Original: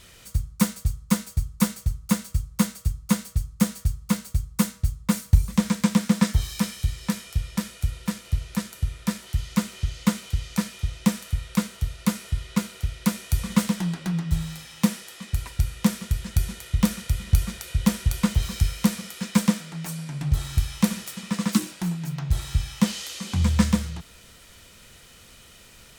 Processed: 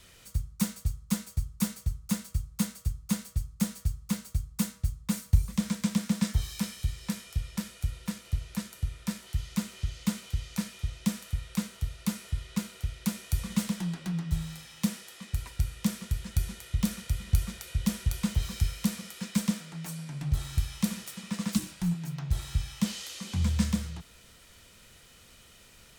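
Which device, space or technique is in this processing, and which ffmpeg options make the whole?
one-band saturation: -filter_complex "[0:a]acrossover=split=250|2400[a][b][c];[b]asoftclip=type=tanh:threshold=-32dB[d];[a][d][c]amix=inputs=3:normalize=0,asplit=3[e][f][g];[e]afade=t=out:st=21.53:d=0.02[h];[f]asubboost=boost=9:cutoff=120,afade=t=in:st=21.53:d=0.02,afade=t=out:st=21.93:d=0.02[i];[g]afade=t=in:st=21.93:d=0.02[j];[h][i][j]amix=inputs=3:normalize=0,volume=-5.5dB"

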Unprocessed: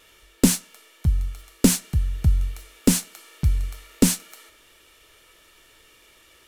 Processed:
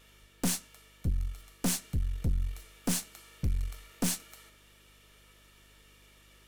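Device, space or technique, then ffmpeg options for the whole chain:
valve amplifier with mains hum: -af "aeval=exprs='(tanh(11.2*val(0)+0.55)-tanh(0.55))/11.2':c=same,aeval=exprs='val(0)+0.00126*(sin(2*PI*50*n/s)+sin(2*PI*2*50*n/s)/2+sin(2*PI*3*50*n/s)/3+sin(2*PI*4*50*n/s)/4+sin(2*PI*5*50*n/s)/5)':c=same,volume=-4dB"

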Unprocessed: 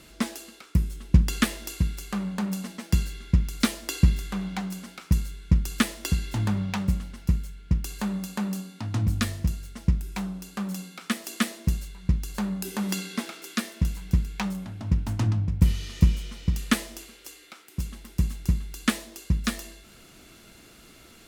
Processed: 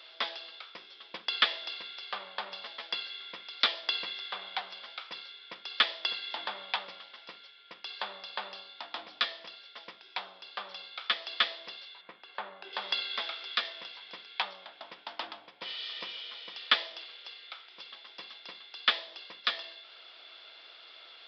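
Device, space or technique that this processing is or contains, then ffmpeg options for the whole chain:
musical greeting card: -filter_complex "[0:a]asettb=1/sr,asplit=3[a][b][c];[a]atrim=end=12.014[d];[b]atrim=start=12.01:end=12.73,asetpts=PTS-STARTPTS,afade=t=in:d=0.004:c=qsin,afade=t=out:st=0.716:d=0.004:c=qsin,lowpass=2.2k[e];[c]atrim=start=12.726[f];[d][e]acrossfade=d=0.004:c1=hsin:c2=qsin[g];[g][f]acrossfade=d=0.004:c1=qsin:c2=hsin,aresample=11025,aresample=44100,highpass=f=560:w=0.5412,highpass=f=560:w=1.3066,equalizer=f=3.4k:t=o:w=0.28:g=10.5"

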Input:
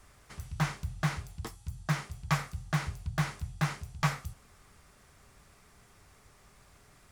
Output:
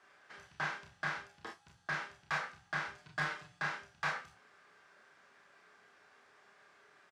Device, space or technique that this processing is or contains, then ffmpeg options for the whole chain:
intercom: -filter_complex "[0:a]asettb=1/sr,asplit=3[a][b][c];[a]atrim=end=2.954[d];[b]atrim=start=2.95:end=3.59,asetpts=PTS-STARTPTS,afade=t=in:d=0.004:c=qsin,afade=t=out:st=0.636:d=0.004:c=qsin,aecho=1:1:6.6:0.9,atrim=end_sample=28224[e];[c]atrim=start=3.586[f];[d][e]acrossfade=d=0.004:c1=hsin:c2=qsin[g];[g][f]acrossfade=d=0.004:c1=qsin:c2=hsin,highpass=380,lowpass=4k,equalizer=f=1.6k:t=o:w=0.22:g=10,asoftclip=type=tanh:threshold=-25dB,asplit=2[h][i];[i]adelay=28,volume=-8dB[j];[h][j]amix=inputs=2:normalize=0,aecho=1:1:33|45:0.562|0.398,volume=-4dB"

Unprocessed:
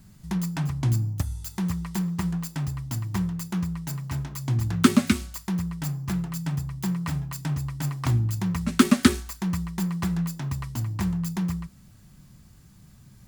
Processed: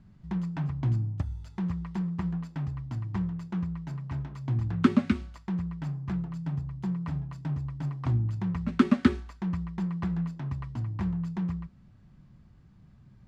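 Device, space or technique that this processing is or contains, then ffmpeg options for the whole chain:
phone in a pocket: -filter_complex "[0:a]lowpass=3.8k,highshelf=f=2.2k:g=-9.5,asettb=1/sr,asplit=3[a][b][c];[a]atrim=end=6.164[d];[b]atrim=start=6.16:end=8.28,asetpts=PTS-STARTPTS,afade=t=in:d=0.004:c=qsin,afade=t=out:st=2.116:d=0.004:c=qsin,equalizer=f=2k:t=o:w=2:g=-3.5[e];[c]atrim=start=8.276[f];[d][e]acrossfade=d=0.004:c1=hsin:c2=qsin[g];[g][f]acrossfade=d=0.004:c1=qsin:c2=hsin,volume=-3.5dB"

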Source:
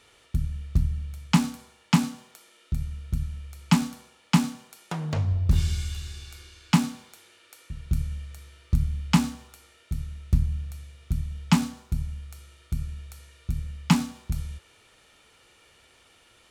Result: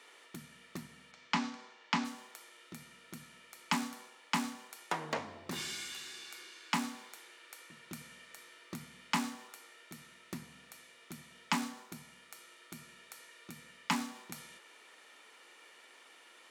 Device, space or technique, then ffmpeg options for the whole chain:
laptop speaker: -filter_complex "[0:a]asplit=3[a][b][c];[a]afade=t=out:st=1.11:d=0.02[d];[b]lowpass=f=6k:w=0.5412,lowpass=f=6k:w=1.3066,afade=t=in:st=1.11:d=0.02,afade=t=out:st=2.04:d=0.02[e];[c]afade=t=in:st=2.04:d=0.02[f];[d][e][f]amix=inputs=3:normalize=0,highpass=f=260:w=0.5412,highpass=f=260:w=1.3066,equalizer=f=1k:t=o:w=0.48:g=5,equalizer=f=1.9k:t=o:w=0.5:g=6.5,alimiter=limit=-14dB:level=0:latency=1:release=300,volume=-2dB"

